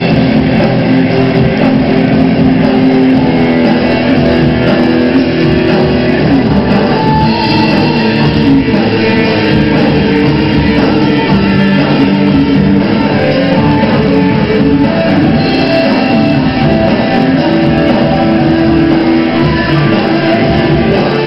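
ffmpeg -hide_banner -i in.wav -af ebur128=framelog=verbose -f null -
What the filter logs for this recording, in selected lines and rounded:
Integrated loudness:
  I:          -8.8 LUFS
  Threshold: -18.8 LUFS
Loudness range:
  LRA:         0.5 LU
  Threshold: -28.8 LUFS
  LRA low:    -9.0 LUFS
  LRA high:   -8.4 LUFS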